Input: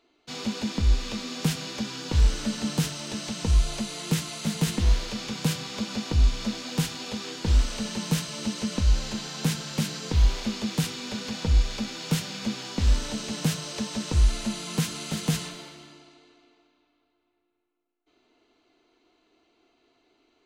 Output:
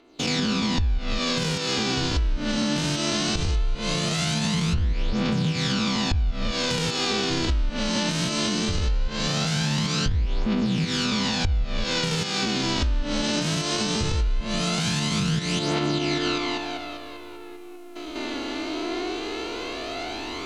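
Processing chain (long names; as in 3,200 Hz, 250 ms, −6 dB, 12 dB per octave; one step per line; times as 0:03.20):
spectrum averaged block by block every 200 ms
camcorder AGC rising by 42 dB per second
phase shifter 0.19 Hz, delay 3.6 ms, feedback 49%
in parallel at −2.5 dB: brickwall limiter −20 dBFS, peak gain reduction 10.5 dB
on the sum: treble cut that deepens with the level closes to 3,000 Hz, closed at −15.5 dBFS
downward compressor 10 to 1, threshold −21 dBFS, peak gain reduction 9.5 dB
level +1.5 dB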